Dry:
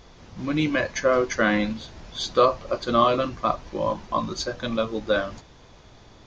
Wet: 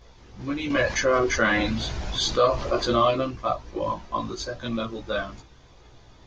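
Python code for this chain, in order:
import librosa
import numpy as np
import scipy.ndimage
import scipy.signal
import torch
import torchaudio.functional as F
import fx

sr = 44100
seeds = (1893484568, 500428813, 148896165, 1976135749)

y = fx.chorus_voices(x, sr, voices=4, hz=0.32, base_ms=16, depth_ms=1.8, mix_pct=55)
y = fx.env_flatten(y, sr, amount_pct=50, at=(0.7, 3.11))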